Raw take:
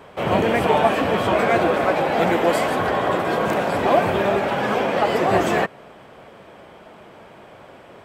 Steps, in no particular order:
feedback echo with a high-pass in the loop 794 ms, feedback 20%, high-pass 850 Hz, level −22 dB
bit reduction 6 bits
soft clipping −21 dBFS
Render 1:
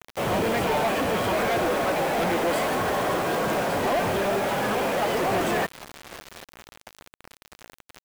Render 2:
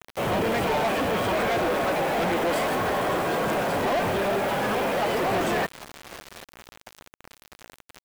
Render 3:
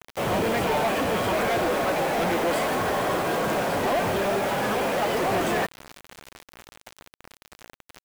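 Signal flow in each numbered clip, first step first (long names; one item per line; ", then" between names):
feedback echo with a high-pass in the loop, then soft clipping, then bit reduction
feedback echo with a high-pass in the loop, then bit reduction, then soft clipping
soft clipping, then feedback echo with a high-pass in the loop, then bit reduction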